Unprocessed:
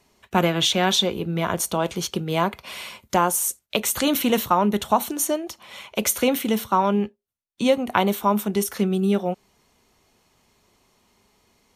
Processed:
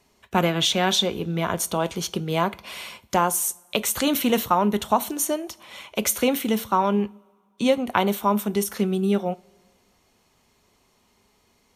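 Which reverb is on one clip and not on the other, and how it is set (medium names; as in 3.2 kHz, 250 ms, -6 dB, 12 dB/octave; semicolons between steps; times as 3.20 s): two-slope reverb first 0.41 s, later 1.9 s, from -17 dB, DRR 18 dB; trim -1 dB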